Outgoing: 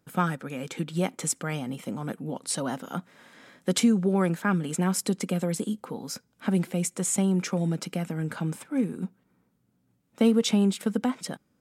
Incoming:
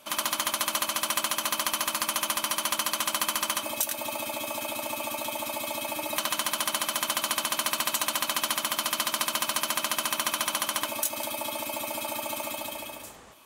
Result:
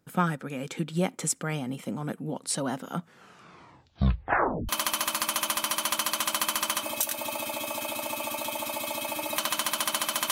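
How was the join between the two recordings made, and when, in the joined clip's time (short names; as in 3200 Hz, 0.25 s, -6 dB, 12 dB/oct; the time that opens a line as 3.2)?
outgoing
2.93 tape stop 1.76 s
4.69 switch to incoming from 1.49 s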